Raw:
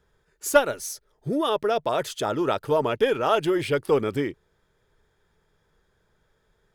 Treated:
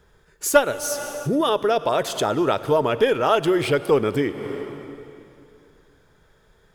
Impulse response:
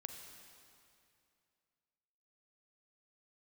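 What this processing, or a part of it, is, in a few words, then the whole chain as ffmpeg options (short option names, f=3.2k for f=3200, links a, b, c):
ducked reverb: -filter_complex "[0:a]asplit=3[a][b][c];[1:a]atrim=start_sample=2205[d];[b][d]afir=irnorm=-1:irlink=0[e];[c]apad=whole_len=297662[f];[e][f]sidechaincompress=threshold=-35dB:ratio=4:attack=5.4:release=250,volume=8.5dB[g];[a][g]amix=inputs=2:normalize=0,volume=1dB"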